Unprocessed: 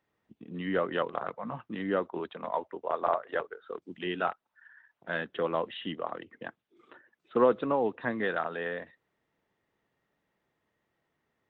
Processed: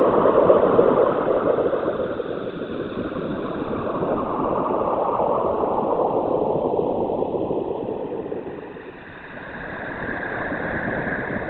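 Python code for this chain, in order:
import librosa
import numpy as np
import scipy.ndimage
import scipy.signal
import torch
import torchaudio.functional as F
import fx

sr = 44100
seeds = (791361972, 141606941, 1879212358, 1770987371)

y = fx.paulstretch(x, sr, seeds[0], factor=17.0, window_s=0.25, from_s=7.44)
y = fx.whisperise(y, sr, seeds[1])
y = F.gain(torch.from_numpy(y), 5.5).numpy()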